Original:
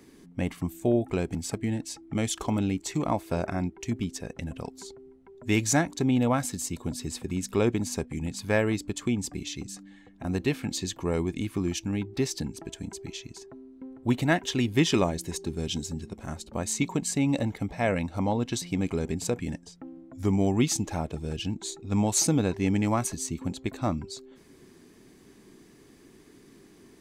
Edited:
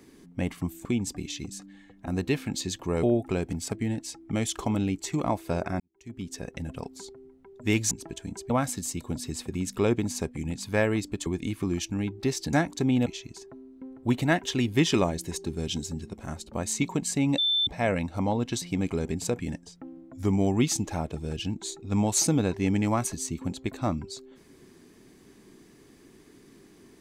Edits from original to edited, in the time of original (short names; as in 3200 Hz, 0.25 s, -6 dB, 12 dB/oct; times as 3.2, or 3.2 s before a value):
3.62–4.2 fade in quadratic
5.73–6.26 swap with 12.47–13.06
9.02–11.2 move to 0.85
17.38–17.67 bleep 3540 Hz -21.5 dBFS